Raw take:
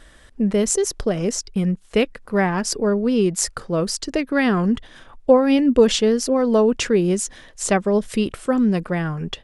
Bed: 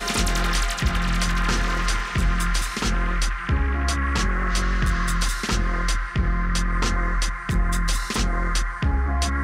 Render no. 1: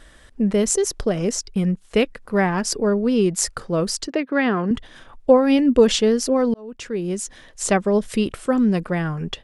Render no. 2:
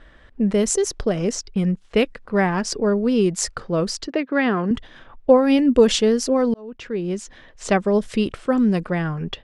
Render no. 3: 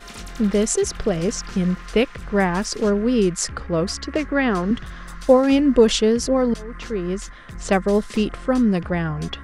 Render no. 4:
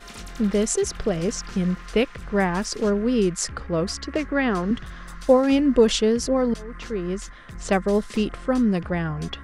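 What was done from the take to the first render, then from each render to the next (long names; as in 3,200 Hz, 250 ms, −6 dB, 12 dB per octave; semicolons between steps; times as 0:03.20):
0:04.07–0:04.71: band-pass filter 220–3,200 Hz; 0:06.54–0:07.62: fade in
low-pass that shuts in the quiet parts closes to 2,700 Hz, open at −13 dBFS
mix in bed −14 dB
level −2.5 dB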